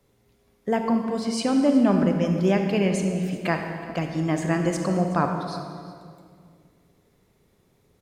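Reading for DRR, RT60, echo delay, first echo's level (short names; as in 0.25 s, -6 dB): 4.0 dB, 2.1 s, 0.371 s, -18.0 dB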